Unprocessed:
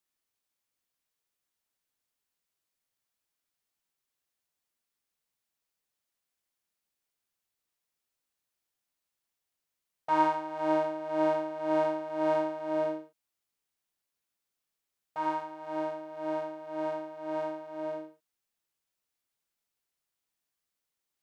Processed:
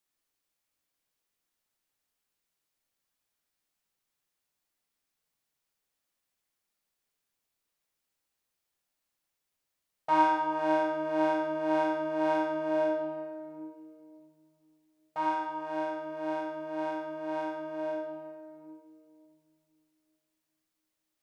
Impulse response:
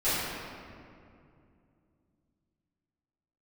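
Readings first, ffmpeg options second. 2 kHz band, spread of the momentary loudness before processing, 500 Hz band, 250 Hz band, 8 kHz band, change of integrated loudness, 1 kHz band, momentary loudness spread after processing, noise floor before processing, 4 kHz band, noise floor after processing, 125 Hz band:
+5.0 dB, 10 LU, 0.0 dB, +2.0 dB, can't be measured, +1.0 dB, +2.0 dB, 16 LU, below −85 dBFS, +3.0 dB, −84 dBFS, −2.0 dB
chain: -filter_complex "[0:a]asplit=2[link_01][link_02];[1:a]atrim=start_sample=2205[link_03];[link_02][link_03]afir=irnorm=-1:irlink=0,volume=-15dB[link_04];[link_01][link_04]amix=inputs=2:normalize=0"

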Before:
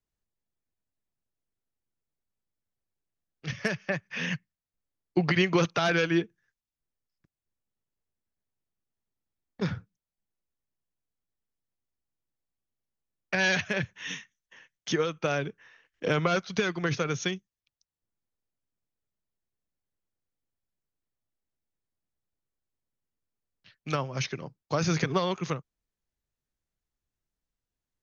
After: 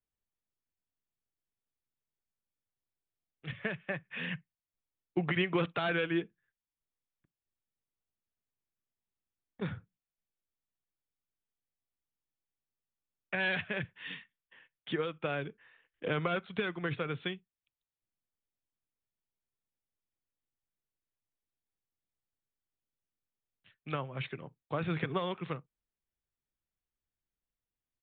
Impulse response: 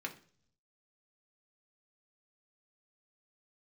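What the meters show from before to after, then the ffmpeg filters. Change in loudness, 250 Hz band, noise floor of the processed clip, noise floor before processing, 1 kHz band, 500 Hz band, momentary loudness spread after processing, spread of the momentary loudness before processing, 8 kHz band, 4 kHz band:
−6.5 dB, −6.5 dB, below −85 dBFS, below −85 dBFS, −6.5 dB, −6.5 dB, 14 LU, 14 LU, can't be measured, −7.5 dB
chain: -filter_complex "[0:a]asplit=2[link_01][link_02];[1:a]atrim=start_sample=2205,atrim=end_sample=3087[link_03];[link_02][link_03]afir=irnorm=-1:irlink=0,volume=-16.5dB[link_04];[link_01][link_04]amix=inputs=2:normalize=0,aresample=8000,aresample=44100,volume=-7dB"

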